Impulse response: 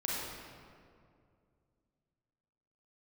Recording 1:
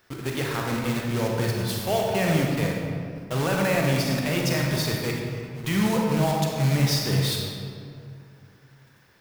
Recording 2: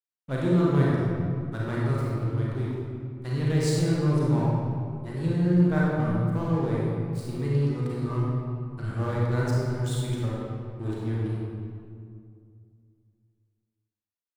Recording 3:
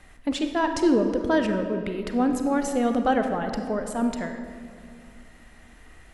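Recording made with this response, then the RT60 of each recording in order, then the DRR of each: 2; 2.3 s, 2.3 s, 2.4 s; -1.0 dB, -5.5 dB, 5.5 dB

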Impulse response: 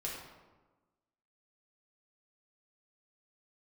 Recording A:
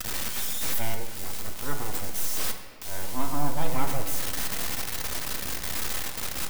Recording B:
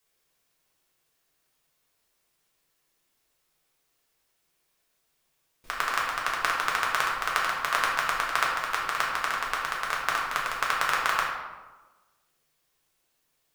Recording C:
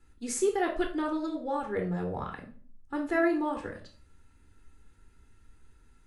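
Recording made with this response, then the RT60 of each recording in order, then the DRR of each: B; 2.1 s, 1.2 s, 0.45 s; 4.0 dB, -4.0 dB, 1.5 dB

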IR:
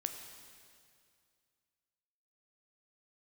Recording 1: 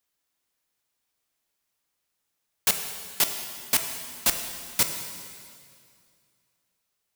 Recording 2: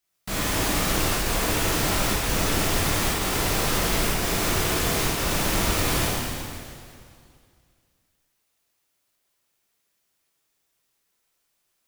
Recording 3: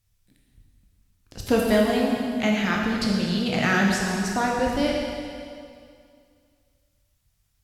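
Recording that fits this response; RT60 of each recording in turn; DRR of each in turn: 1; 2.3 s, 2.3 s, 2.3 s; 5.0 dB, -7.5 dB, -2.0 dB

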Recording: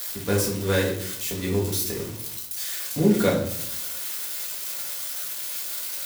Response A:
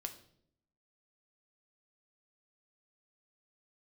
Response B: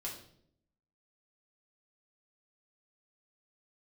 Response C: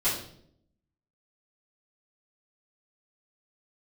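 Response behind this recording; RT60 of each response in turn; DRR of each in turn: B; 0.65 s, 0.65 s, 0.65 s; 5.5 dB, -4.0 dB, -13.5 dB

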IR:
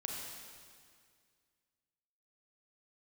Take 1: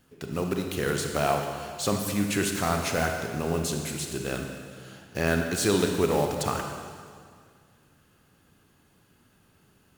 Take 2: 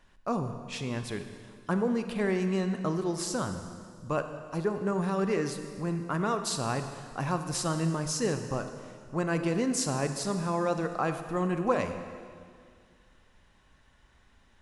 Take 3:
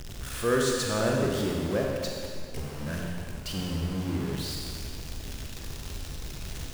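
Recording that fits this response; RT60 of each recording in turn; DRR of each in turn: 3; 2.0 s, 2.0 s, 2.0 s; 3.5 dB, 7.5 dB, -1.0 dB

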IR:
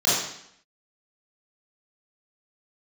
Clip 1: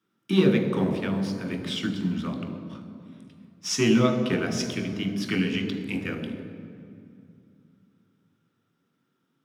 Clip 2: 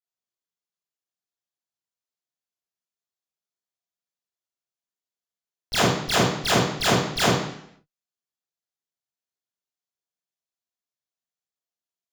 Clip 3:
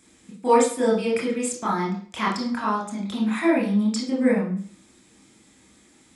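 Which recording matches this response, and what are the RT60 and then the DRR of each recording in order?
2; 2.5 s, 0.70 s, 0.45 s; 4.0 dB, -10.5 dB, -4.5 dB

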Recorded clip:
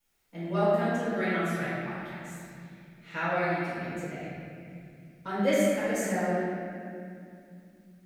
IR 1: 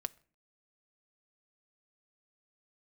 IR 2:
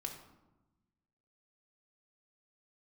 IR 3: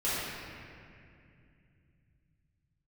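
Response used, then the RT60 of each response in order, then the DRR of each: 3; no single decay rate, 1.0 s, 2.4 s; 11.0 dB, 1.0 dB, -12.5 dB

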